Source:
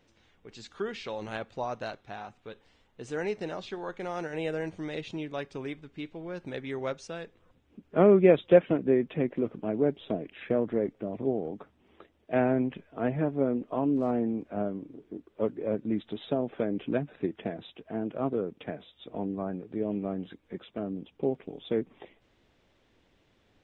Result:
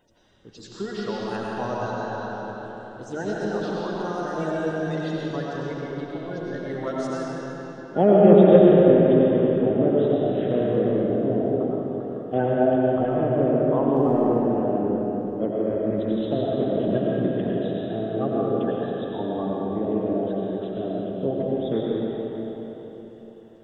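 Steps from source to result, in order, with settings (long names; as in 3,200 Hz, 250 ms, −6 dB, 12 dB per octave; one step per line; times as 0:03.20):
spectral magnitudes quantised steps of 30 dB
parametric band 2,300 Hz −14 dB 0.43 octaves
mains-hum notches 50/100/150 Hz
comb and all-pass reverb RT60 4 s, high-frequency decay 0.75×, pre-delay 60 ms, DRR −5 dB
level +2.5 dB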